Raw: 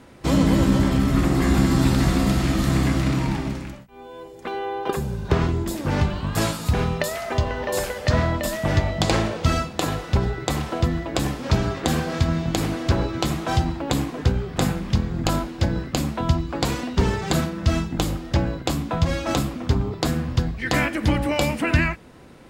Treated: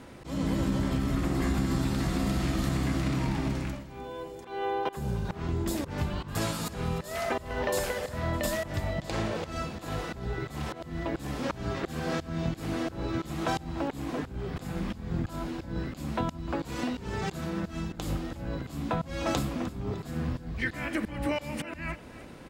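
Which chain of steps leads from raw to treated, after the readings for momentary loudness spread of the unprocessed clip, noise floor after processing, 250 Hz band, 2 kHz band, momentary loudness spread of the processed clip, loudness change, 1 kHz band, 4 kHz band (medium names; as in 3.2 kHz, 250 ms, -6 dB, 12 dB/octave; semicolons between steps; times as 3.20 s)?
7 LU, -46 dBFS, -8.5 dB, -8.5 dB, 7 LU, -9.5 dB, -8.0 dB, -10.5 dB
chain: compression, threshold -25 dBFS, peak gain reduction 11.5 dB; slow attack 201 ms; on a send: feedback delay 304 ms, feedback 45%, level -16.5 dB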